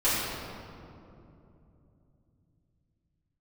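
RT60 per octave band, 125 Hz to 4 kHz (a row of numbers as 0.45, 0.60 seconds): 5.2, 4.2, 3.2, 2.5, 1.8, 1.4 seconds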